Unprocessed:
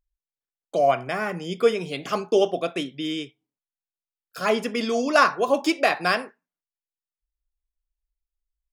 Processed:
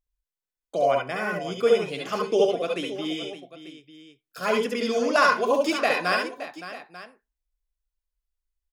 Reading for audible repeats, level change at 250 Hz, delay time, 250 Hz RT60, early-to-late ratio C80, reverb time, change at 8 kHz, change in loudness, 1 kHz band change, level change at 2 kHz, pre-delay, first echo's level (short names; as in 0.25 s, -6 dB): 3, -2.0 dB, 67 ms, none, none, none, -1.0 dB, -0.5 dB, -1.5 dB, 0.0 dB, none, -0.5 dB